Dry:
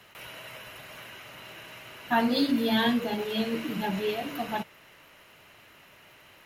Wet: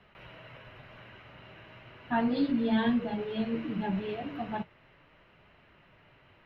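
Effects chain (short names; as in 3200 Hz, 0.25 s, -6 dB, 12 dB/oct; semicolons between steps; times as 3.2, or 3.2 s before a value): low shelf 140 Hz +11 dB; flange 0.36 Hz, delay 4.4 ms, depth 6.8 ms, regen -53%; air absorption 330 m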